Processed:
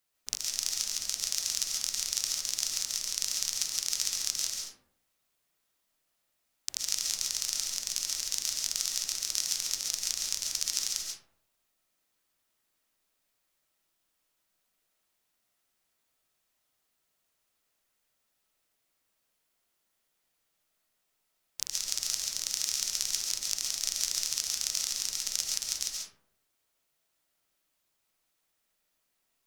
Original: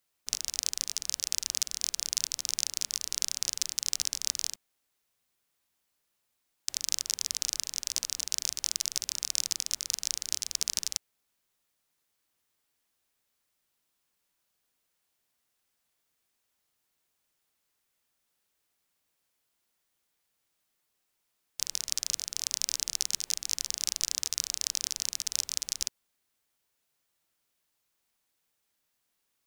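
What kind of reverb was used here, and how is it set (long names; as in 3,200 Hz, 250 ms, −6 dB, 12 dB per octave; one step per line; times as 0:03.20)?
comb and all-pass reverb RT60 0.7 s, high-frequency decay 0.4×, pre-delay 95 ms, DRR −1 dB
level −2 dB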